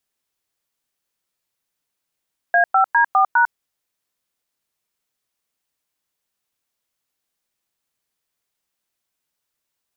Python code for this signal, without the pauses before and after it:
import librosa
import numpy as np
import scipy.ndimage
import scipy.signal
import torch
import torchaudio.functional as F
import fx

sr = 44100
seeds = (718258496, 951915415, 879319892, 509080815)

y = fx.dtmf(sr, digits='A5D4#', tone_ms=100, gap_ms=103, level_db=-14.0)